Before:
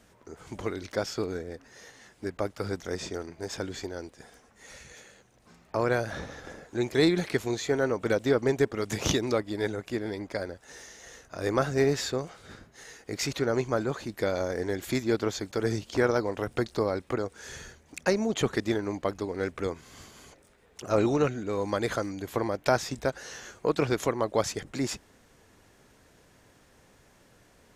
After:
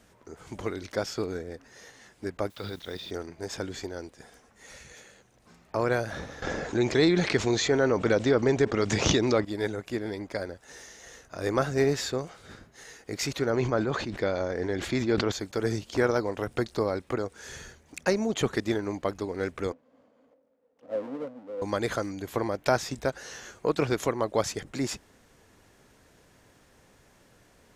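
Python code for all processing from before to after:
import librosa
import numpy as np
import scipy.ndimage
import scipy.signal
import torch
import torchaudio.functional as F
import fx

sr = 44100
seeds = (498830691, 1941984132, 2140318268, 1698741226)

y = fx.chain(x, sr, fx.level_steps(step_db=12),
    fx.lowpass_res(hz=3700.0, q=6.5),
    fx.quant_dither(seeds[0], bits=10, dither='triangular'), at=(2.5, 3.11))
y = fx.chain(y, sr, fx.lowpass(hz=6900.0, slope=24),
    fx.env_flatten(amount_pct=50), at=(6.42, 9.45))
y = fx.chain(y, sr, fx.lowpass(hz=4700.0, slope=12),
    fx.sustainer(db_per_s=55.0), at=(13.5, 15.32))
y = fx.chain(y, sr, fx.halfwave_hold(),
    fx.double_bandpass(hz=370.0, octaves=0.92),
    fx.low_shelf(hz=390.0, db=-11.5), at=(19.72, 21.62))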